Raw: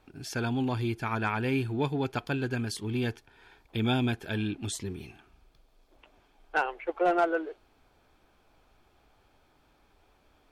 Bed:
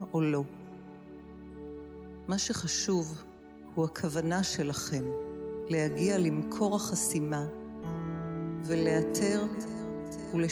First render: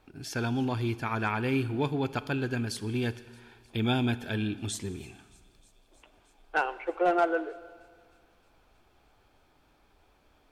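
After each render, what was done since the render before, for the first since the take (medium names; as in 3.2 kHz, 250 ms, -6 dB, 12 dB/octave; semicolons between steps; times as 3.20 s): feedback echo behind a high-pass 311 ms, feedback 77%, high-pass 4.2 kHz, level -23 dB; Schroeder reverb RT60 1.8 s, combs from 26 ms, DRR 15.5 dB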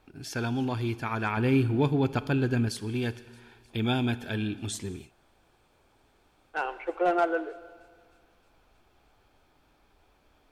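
1.37–2.69 s: bass shelf 470 Hz +6.5 dB; 5.04–6.57 s: room tone, crossfade 0.16 s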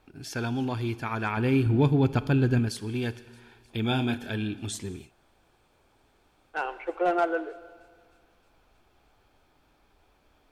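1.66–2.59 s: bass shelf 200 Hz +7 dB; 3.88–4.31 s: doubling 30 ms -8 dB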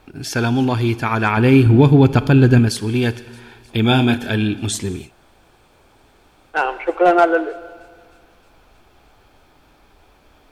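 trim +12 dB; peak limiter -1 dBFS, peak gain reduction 3 dB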